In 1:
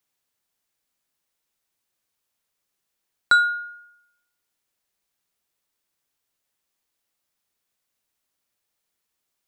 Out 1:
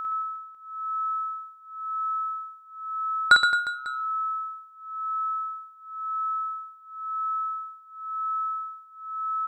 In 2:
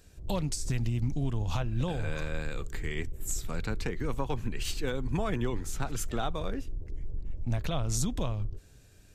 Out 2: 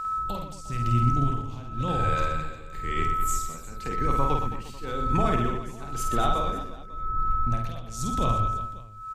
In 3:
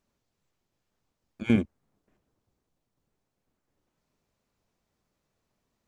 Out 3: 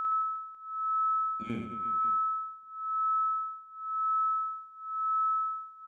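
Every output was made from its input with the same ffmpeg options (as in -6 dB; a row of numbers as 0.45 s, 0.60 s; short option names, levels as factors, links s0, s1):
-af "aeval=exprs='val(0)+0.02*sin(2*PI*1300*n/s)':c=same,tremolo=f=0.96:d=0.88,aecho=1:1:50|120|218|355.2|547.3:0.631|0.398|0.251|0.158|0.1,volume=1.58"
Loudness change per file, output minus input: -7.5 LU, +6.0 LU, -3.5 LU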